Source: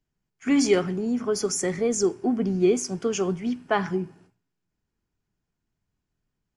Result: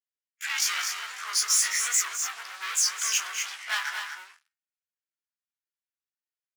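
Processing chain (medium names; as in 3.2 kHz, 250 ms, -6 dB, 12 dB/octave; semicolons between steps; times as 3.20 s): short-time spectra conjugated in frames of 54 ms; waveshaping leveller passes 5; peak limiter -18 dBFS, peak gain reduction 6 dB; high-pass 1.4 kHz 24 dB/octave; doubling 13 ms -7.5 dB; loudspeakers at several distances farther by 72 m -12 dB, 85 m -7 dB; warped record 78 rpm, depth 100 cents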